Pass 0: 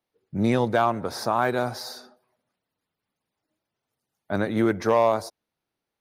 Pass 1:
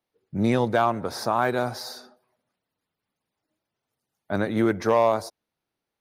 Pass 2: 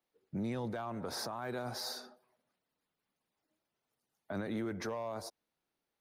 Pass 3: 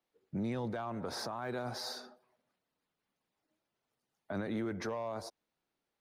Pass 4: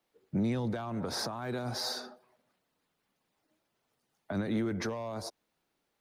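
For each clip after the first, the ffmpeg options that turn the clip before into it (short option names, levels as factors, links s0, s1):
-af anull
-filter_complex "[0:a]equalizer=f=100:w=1.6:g=-7,acrossover=split=150[s0][s1];[s1]acompressor=threshold=0.0398:ratio=6[s2];[s0][s2]amix=inputs=2:normalize=0,alimiter=level_in=1.5:limit=0.0631:level=0:latency=1:release=12,volume=0.668,volume=0.708"
-af "highshelf=f=9800:g=-11,volume=1.12"
-filter_complex "[0:a]acrossover=split=300|3000[s0][s1][s2];[s1]acompressor=threshold=0.00708:ratio=6[s3];[s0][s3][s2]amix=inputs=3:normalize=0,volume=2.11"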